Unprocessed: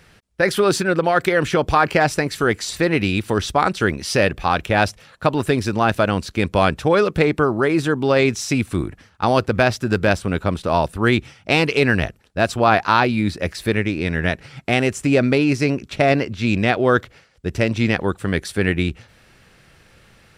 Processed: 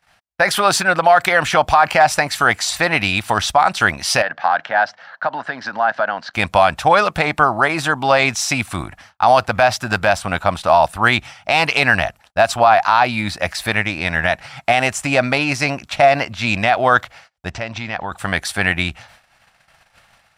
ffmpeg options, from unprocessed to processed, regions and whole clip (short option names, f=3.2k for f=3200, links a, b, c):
-filter_complex "[0:a]asettb=1/sr,asplit=3[a][b][c];[a]atrim=end=4.224[d];[b]atrim=start=4.22:end=6.34,asetpts=PTS-STARTPTS,afade=t=in:d=0.004:c=qsin,afade=t=out:st=2.116:d=0.004:c=qsin,acompressor=threshold=-20dB:ratio=6:attack=3.2:release=140:knee=1:detection=peak,highpass=f=180:w=0.5412,highpass=f=180:w=1.3066,equalizer=f=190:t=q:w=4:g=-6,equalizer=f=360:t=q:w=4:g=-7,equalizer=f=1.1k:t=q:w=4:g=-3,equalizer=f=1.6k:t=q:w=4:g=8,equalizer=f=2.5k:t=q:w=4:g=-10,equalizer=f=3.6k:t=q:w=4:g=-7,lowpass=f=4.2k:w=0.5412,lowpass=f=4.2k:w=1.3066[e];[c]atrim=start=6.336[f];[d][e]acrossfade=d=0.004:c1=hsin:c2=qsin[g];[g][f]acrossfade=d=0.004:c1=qsin:c2=hsin,asettb=1/sr,asplit=3[h][i][j];[h]atrim=end=17.504[k];[i]atrim=start=17.5:end=18.12,asetpts=PTS-STARTPTS,afade=t=in:d=0.004:c=qsin,afade=t=out:st=0.616:d=0.004:c=qsin,lowpass=f=7.2k:w=0.5412,lowpass=f=7.2k:w=1.3066,highshelf=f=5.4k:g=-6.5,acompressor=threshold=-25dB:ratio=3:attack=3.2:release=140:knee=1:detection=peak[l];[j]atrim=start=18.116[m];[k][l]acrossfade=d=0.004:c1=hsin:c2=qsin[n];[n][m]acrossfade=d=0.004:c1=qsin:c2=hsin,agate=range=-25dB:threshold=-49dB:ratio=16:detection=peak,lowshelf=f=550:t=q:w=3:g=-9,alimiter=level_in=7.5dB:limit=-1dB:release=50:level=0:latency=1,volume=-1dB"